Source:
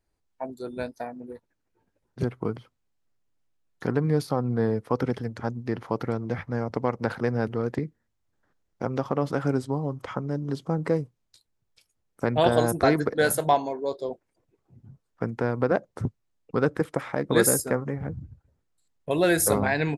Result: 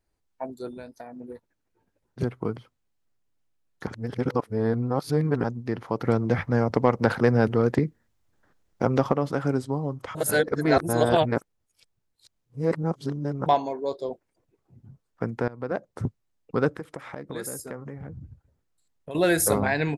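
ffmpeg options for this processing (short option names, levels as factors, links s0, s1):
-filter_complex "[0:a]asettb=1/sr,asplit=3[s0][s1][s2];[s0]atrim=end=0.704[s3];[s1]atrim=start=0.7:end=1.15,asetpts=PTS-STARTPTS,afade=t=in:d=0.004:c=qsin,afade=t=out:st=0.446:d=0.004:c=qsin,acompressor=threshold=0.0141:ratio=4:attack=3.2:release=140:knee=1:detection=peak[s4];[s2]atrim=start=1.146[s5];[s3][s4]acrossfade=d=0.004:c1=hsin:c2=qsin[s6];[s6][s5]acrossfade=d=0.004:c1=qsin:c2=hsin,asettb=1/sr,asplit=3[s7][s8][s9];[s7]atrim=end=6.054[s10];[s8]atrim=start=6.05:end=9.13,asetpts=PTS-STARTPTS,afade=t=in:d=0.004:c=qsin,afade=t=out:st=3.076:d=0.004:c=qsin,acontrast=58[s11];[s9]atrim=start=9.126[s12];[s10][s11]acrossfade=d=0.004:c1=hsin:c2=qsin[s13];[s13][s12]acrossfade=d=0.004:c1=qsin:c2=hsin,asettb=1/sr,asplit=3[s14][s15][s16];[s14]atrim=end=16.714[s17];[s15]atrim=start=16.71:end=19.15,asetpts=PTS-STARTPTS,afade=t=in:d=0.004:c=qsin,afade=t=out:st=2.436:d=0.004:c=qsin,acompressor=threshold=0.0141:ratio=2.5:attack=3.2:release=140:knee=1:detection=peak[s18];[s16]atrim=start=19.146[s19];[s17][s18]acrossfade=d=0.004:c1=hsin:c2=qsin[s20];[s20][s19]acrossfade=d=0.004:c1=qsin:c2=hsin,asplit=6[s21][s22][s23][s24][s25][s26];[s21]atrim=end=3.872[s27];[s22]atrim=start=3.868:end=5.442,asetpts=PTS-STARTPTS,areverse[s28];[s23]atrim=start=5.438:end=10.152[s29];[s24]atrim=start=10.148:end=13.462,asetpts=PTS-STARTPTS,areverse[s30];[s25]atrim=start=13.458:end=15.48,asetpts=PTS-STARTPTS,afade=t=out:st=2.018:d=0.004:c=hsin:silence=0.1[s31];[s26]atrim=start=15.48,asetpts=PTS-STARTPTS,afade=t=in:d=0.53:silence=0.1[s32];[s27][s28]acrossfade=d=0.004:c1=hsin:c2=hsin[s33];[s33][s29]acrossfade=d=0.004:c1=hsin:c2=hsin[s34];[s34][s30]acrossfade=d=0.004:c1=hsin:c2=hsin[s35];[s31][s32]concat=n=2:v=0:a=1[s36];[s35][s36]acrossfade=d=0.004:c1=hsin:c2=hsin"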